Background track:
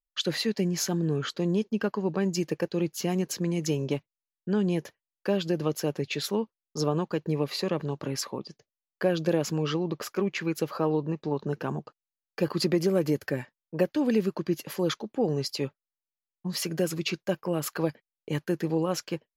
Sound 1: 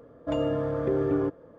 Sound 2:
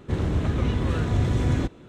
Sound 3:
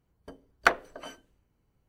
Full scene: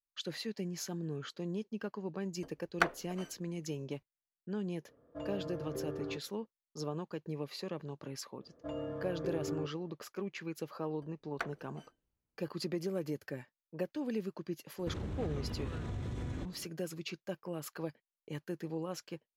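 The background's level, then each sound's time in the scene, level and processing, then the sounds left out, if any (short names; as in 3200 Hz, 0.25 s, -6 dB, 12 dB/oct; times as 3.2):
background track -12 dB
2.15 add 3 -7.5 dB
4.88 add 1 -14.5 dB
8.37 add 1 -13 dB
10.74 add 3 -17 dB
14.78 add 2 -8.5 dB + compressor, threshold -27 dBFS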